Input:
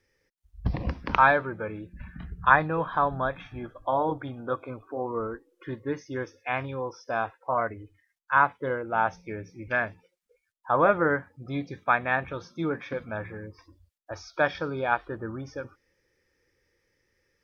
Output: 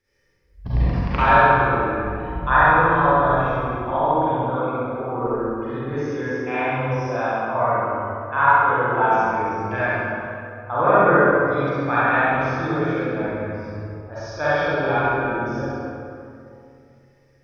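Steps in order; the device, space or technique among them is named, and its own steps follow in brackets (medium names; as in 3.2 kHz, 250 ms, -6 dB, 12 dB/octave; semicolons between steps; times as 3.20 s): tunnel (flutter echo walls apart 11.5 m, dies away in 0.83 s; reverberation RT60 2.6 s, pre-delay 34 ms, DRR -10.5 dB); trim -5 dB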